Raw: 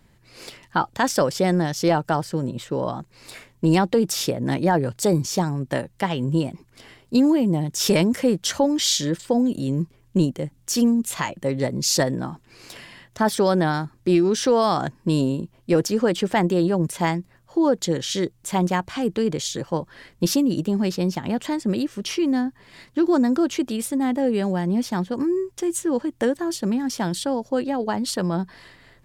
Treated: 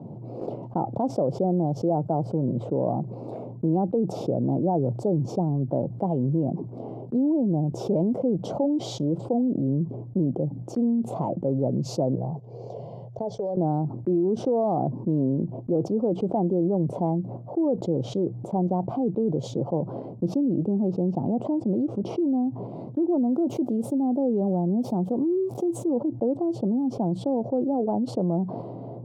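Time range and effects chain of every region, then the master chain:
12.15–13.57 s: FFT filter 120 Hz 0 dB, 300 Hz -23 dB, 440 Hz -3 dB, 860 Hz -9 dB, 1.3 kHz -11 dB, 2.2 kHz -7 dB, 6.5 kHz +5 dB, 10 kHz -20 dB + compression, threshold -33 dBFS + comb of notches 1.3 kHz
23.20–25.88 s: zero-crossing glitches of -28 dBFS + treble shelf 6.4 kHz +8.5 dB
whole clip: elliptic band-pass 120–740 Hz, stop band 40 dB; gate -47 dBFS, range -11 dB; level flattener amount 70%; trim -6.5 dB

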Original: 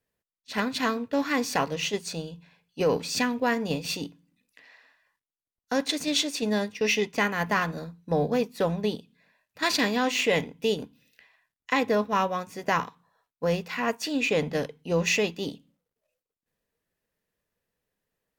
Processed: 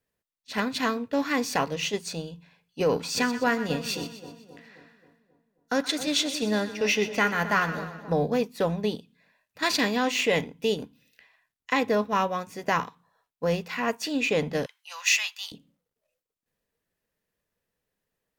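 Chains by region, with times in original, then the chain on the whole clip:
2.91–8.13 s: peaking EQ 1.4 kHz +7.5 dB 0.21 oct + two-band feedback delay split 920 Hz, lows 267 ms, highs 124 ms, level -12 dB
14.66–15.52 s: inverse Chebyshev high-pass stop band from 400 Hz, stop band 50 dB + treble shelf 2.5 kHz +5.5 dB
whole clip: none

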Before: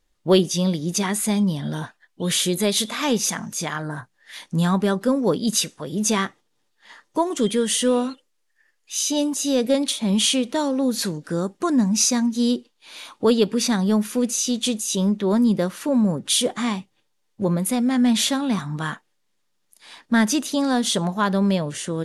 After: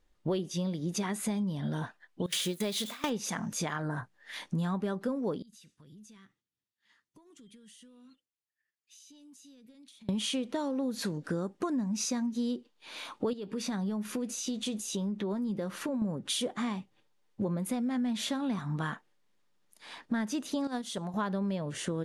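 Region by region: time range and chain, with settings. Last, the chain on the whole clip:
2.26–3.10 s: zero-crossing glitches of -22 dBFS + gate with hold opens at -13 dBFS, closes at -15 dBFS + peaking EQ 3.3 kHz +3.5 dB 2 oct
5.42–10.09 s: compression 8:1, threshold -31 dBFS + amplifier tone stack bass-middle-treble 6-0-2
13.33–16.02 s: compression 2.5:1, threshold -30 dBFS + doubling 15 ms -14 dB
20.67–21.14 s: gate -19 dBFS, range -13 dB + treble shelf 4.6 kHz +6.5 dB
whole clip: treble shelf 3.5 kHz -9 dB; compression 6:1, threshold -30 dBFS

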